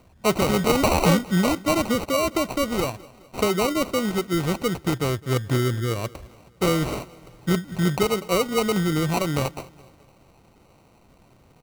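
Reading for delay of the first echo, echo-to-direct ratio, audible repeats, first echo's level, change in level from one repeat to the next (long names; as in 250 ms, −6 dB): 210 ms, −21.5 dB, 3, −22.5 dB, −6.0 dB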